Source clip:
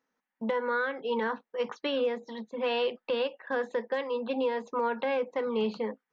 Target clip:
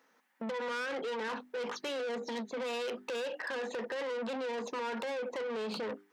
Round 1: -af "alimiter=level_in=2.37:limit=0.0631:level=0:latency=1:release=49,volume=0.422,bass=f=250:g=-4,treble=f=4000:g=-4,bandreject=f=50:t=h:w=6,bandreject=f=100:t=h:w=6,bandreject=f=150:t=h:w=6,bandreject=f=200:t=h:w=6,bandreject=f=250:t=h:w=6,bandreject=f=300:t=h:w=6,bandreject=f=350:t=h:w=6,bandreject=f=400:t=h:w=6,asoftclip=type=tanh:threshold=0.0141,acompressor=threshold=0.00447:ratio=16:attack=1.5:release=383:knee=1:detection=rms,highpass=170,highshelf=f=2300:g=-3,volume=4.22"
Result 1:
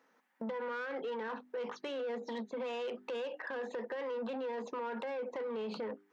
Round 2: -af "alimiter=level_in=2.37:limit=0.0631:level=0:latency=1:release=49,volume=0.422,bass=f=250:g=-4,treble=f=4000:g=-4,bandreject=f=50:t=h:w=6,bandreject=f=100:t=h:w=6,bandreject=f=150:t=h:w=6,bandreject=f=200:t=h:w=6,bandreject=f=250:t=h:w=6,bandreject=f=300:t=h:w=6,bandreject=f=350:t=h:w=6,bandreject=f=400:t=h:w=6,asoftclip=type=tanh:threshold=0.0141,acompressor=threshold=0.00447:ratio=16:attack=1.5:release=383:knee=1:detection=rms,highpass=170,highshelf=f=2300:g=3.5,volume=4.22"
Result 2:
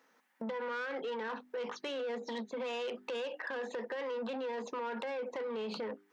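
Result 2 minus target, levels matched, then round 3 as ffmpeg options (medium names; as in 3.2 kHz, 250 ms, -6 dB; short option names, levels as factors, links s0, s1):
saturation: distortion -6 dB
-af "alimiter=level_in=2.37:limit=0.0631:level=0:latency=1:release=49,volume=0.422,bass=f=250:g=-4,treble=f=4000:g=-4,bandreject=f=50:t=h:w=6,bandreject=f=100:t=h:w=6,bandreject=f=150:t=h:w=6,bandreject=f=200:t=h:w=6,bandreject=f=250:t=h:w=6,bandreject=f=300:t=h:w=6,bandreject=f=350:t=h:w=6,bandreject=f=400:t=h:w=6,asoftclip=type=tanh:threshold=0.00631,acompressor=threshold=0.00447:ratio=16:attack=1.5:release=383:knee=1:detection=rms,highpass=170,highshelf=f=2300:g=3.5,volume=4.22"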